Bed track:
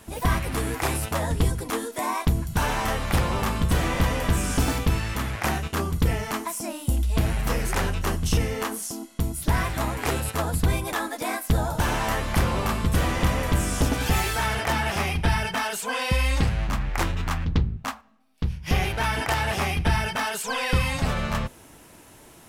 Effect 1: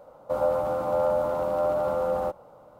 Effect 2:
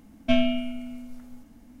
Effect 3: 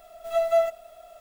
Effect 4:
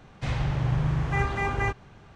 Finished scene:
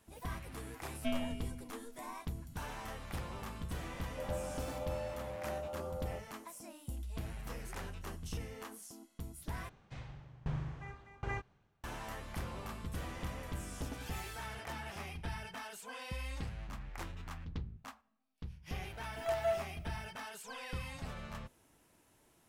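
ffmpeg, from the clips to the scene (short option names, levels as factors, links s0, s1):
-filter_complex "[0:a]volume=0.112[s0];[1:a]equalizer=f=1200:t=o:w=0.77:g=-3.5[s1];[4:a]aeval=exprs='val(0)*pow(10,-25*if(lt(mod(1.3*n/s,1),2*abs(1.3)/1000),1-mod(1.3*n/s,1)/(2*abs(1.3)/1000),(mod(1.3*n/s,1)-2*abs(1.3)/1000)/(1-2*abs(1.3)/1000))/20)':c=same[s2];[s0]asplit=2[s3][s4];[s3]atrim=end=9.694[s5];[s2]atrim=end=2.15,asetpts=PTS-STARTPTS,volume=0.355[s6];[s4]atrim=start=11.836[s7];[2:a]atrim=end=1.8,asetpts=PTS-STARTPTS,volume=0.188,afade=t=in:d=0.004:c=hsin,afade=t=out:st=1.796:d=0.004:c=hsin,adelay=760[s8];[s1]atrim=end=2.79,asetpts=PTS-STARTPTS,volume=0.15,afade=t=in:d=0.004:c=hsin,afade=t=out:st=2.786:d=0.004:c=hsin,adelay=3880[s9];[3:a]atrim=end=1.2,asetpts=PTS-STARTPTS,volume=0.251,afade=t=in:d=0.004:c=hsin,afade=t=out:st=1.196:d=0.004:c=hsin,adelay=834372S[s10];[s5][s6]acrossfade=d=0.004:c1=hsin:c2=hsin[s11];[s11][s7]acrossfade=d=0.004:c1=hsin:c2=hsin[s12];[s12][s8][s9][s10]amix=inputs=4:normalize=0"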